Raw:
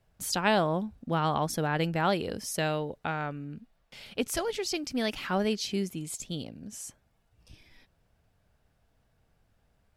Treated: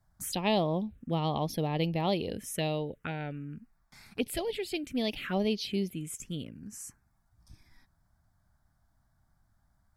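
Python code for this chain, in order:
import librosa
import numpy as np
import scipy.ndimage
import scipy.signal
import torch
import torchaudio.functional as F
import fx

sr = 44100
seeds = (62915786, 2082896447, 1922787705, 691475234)

y = fx.env_phaser(x, sr, low_hz=460.0, high_hz=1500.0, full_db=-26.0)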